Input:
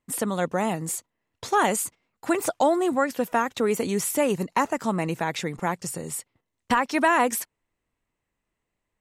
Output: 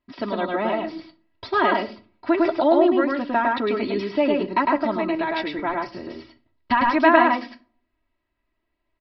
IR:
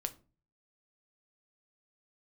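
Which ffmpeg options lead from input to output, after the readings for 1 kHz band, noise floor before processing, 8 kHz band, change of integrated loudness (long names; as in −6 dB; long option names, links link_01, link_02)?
+3.5 dB, −82 dBFS, below −30 dB, +4.0 dB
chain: -filter_complex "[0:a]aecho=1:1:3.1:1,aresample=11025,aresample=44100,asplit=2[link_01][link_02];[1:a]atrim=start_sample=2205,highshelf=frequency=4900:gain=-7,adelay=105[link_03];[link_02][link_03]afir=irnorm=-1:irlink=0,volume=-0.5dB[link_04];[link_01][link_04]amix=inputs=2:normalize=0,volume=-2dB"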